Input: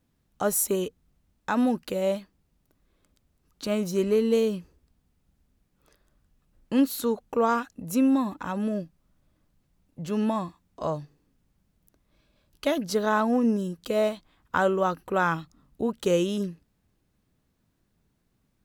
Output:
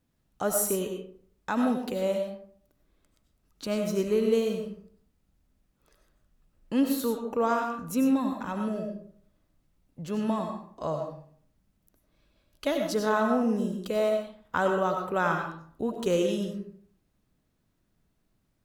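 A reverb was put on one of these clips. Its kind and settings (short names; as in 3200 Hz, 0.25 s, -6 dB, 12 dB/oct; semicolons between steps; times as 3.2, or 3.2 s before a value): digital reverb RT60 0.56 s, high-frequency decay 0.55×, pre-delay 55 ms, DRR 3.5 dB; gain -3 dB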